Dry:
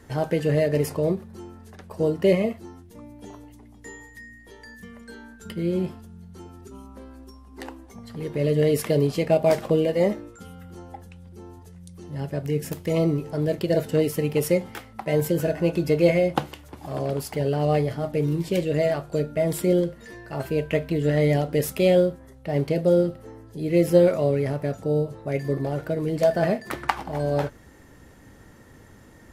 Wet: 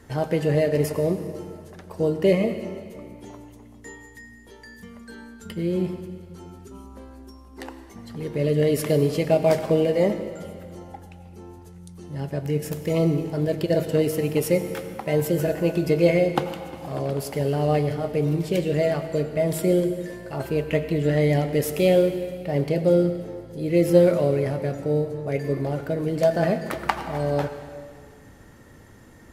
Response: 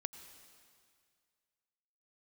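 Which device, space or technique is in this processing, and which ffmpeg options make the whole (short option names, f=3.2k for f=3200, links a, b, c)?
stairwell: -filter_complex "[1:a]atrim=start_sample=2205[a];[0:a][a]afir=irnorm=-1:irlink=0,volume=2.5dB"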